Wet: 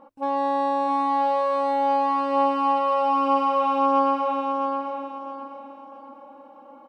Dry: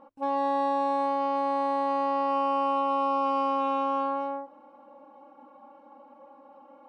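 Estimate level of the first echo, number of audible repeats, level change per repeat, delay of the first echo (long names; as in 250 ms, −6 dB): −3.0 dB, 4, −10.0 dB, 662 ms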